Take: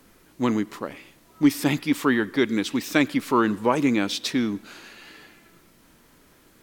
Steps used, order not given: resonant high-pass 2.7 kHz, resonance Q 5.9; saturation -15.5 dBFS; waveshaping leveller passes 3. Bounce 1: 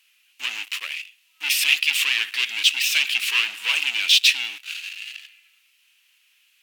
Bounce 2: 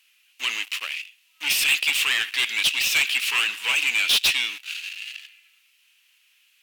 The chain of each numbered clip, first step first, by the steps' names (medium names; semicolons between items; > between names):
waveshaping leveller > saturation > resonant high-pass; waveshaping leveller > resonant high-pass > saturation